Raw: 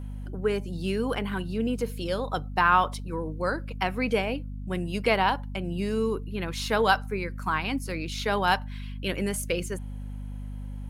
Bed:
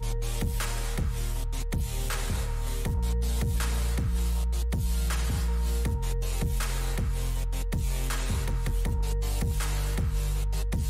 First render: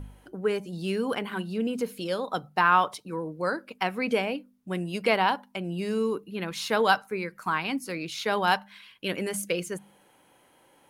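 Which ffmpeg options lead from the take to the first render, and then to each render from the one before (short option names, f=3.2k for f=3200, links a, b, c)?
-af "bandreject=f=50:t=h:w=4,bandreject=f=100:t=h:w=4,bandreject=f=150:t=h:w=4,bandreject=f=200:t=h:w=4,bandreject=f=250:t=h:w=4"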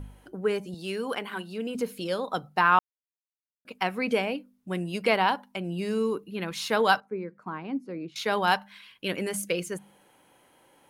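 -filter_complex "[0:a]asettb=1/sr,asplit=3[a][b][c];[a]atrim=end=0.744[d];[b]atrim=start=0.74:end=1.75,asetpts=PTS-STARTPTS,afade=t=in:d=0.004:c=qsin,afade=t=out:st=1.006:d=0.004:c=qsin,highpass=f=400:p=1[e];[c]atrim=start=1.746[f];[d][e]acrossfade=d=0.004:c1=hsin:c2=qsin[g];[g][f]acrossfade=d=0.004:c1=qsin:c2=hsin,asettb=1/sr,asplit=3[h][i][j];[h]atrim=end=7.004[k];[i]atrim=start=7:end=8.16,asetpts=PTS-STARTPTS,afade=t=in:d=0.004:c=qsin,afade=t=out:st=1.156:d=0.004:c=qsin,bandpass=f=290:t=q:w=0.81[l];[j]atrim=start=8.156[m];[k][l]acrossfade=d=0.004:c1=hsin:c2=qsin[n];[n][m]acrossfade=d=0.004:c1=qsin:c2=hsin,asplit=3[o][p][q];[o]atrim=end=2.79,asetpts=PTS-STARTPTS,afade=t=out:st=2.786:d=0.004:c=hsin[r];[p]atrim=start=2.79:end=3.65,asetpts=PTS-STARTPTS,volume=0[s];[q]atrim=start=3.65,asetpts=PTS-STARTPTS,afade=t=in:d=0.004:c=hsin[t];[r][s][t]concat=n=3:v=0:a=1"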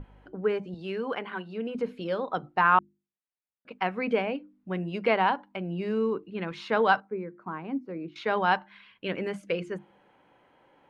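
-af "lowpass=2.4k,bandreject=f=50:t=h:w=6,bandreject=f=100:t=h:w=6,bandreject=f=150:t=h:w=6,bandreject=f=200:t=h:w=6,bandreject=f=250:t=h:w=6,bandreject=f=300:t=h:w=6,bandreject=f=350:t=h:w=6"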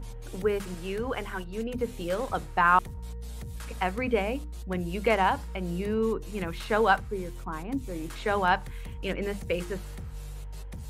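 -filter_complex "[1:a]volume=-11.5dB[a];[0:a][a]amix=inputs=2:normalize=0"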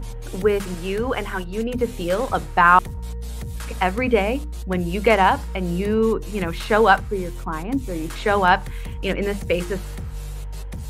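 -af "volume=8dB,alimiter=limit=-2dB:level=0:latency=1"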